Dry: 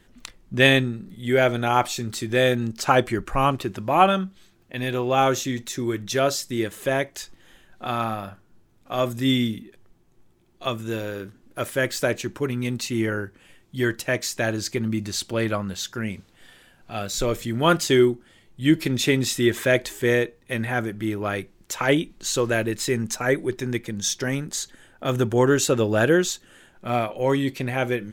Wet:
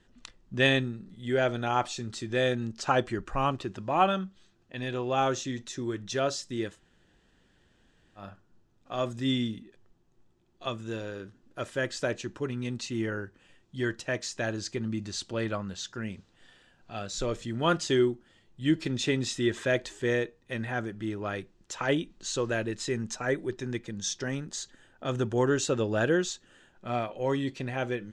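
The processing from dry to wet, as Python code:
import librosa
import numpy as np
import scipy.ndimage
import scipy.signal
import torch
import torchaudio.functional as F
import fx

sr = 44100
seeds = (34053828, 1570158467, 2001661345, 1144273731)

y = fx.edit(x, sr, fx.room_tone_fill(start_s=6.75, length_s=1.45, crossfade_s=0.1), tone=tone)
y = scipy.signal.sosfilt(scipy.signal.butter(4, 7700.0, 'lowpass', fs=sr, output='sos'), y)
y = fx.notch(y, sr, hz=2200.0, q=9.6)
y = y * 10.0 ** (-7.0 / 20.0)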